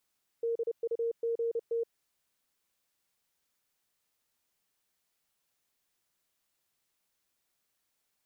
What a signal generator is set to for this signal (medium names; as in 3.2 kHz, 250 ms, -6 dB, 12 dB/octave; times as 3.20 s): Morse "DUGT" 30 wpm 463 Hz -28 dBFS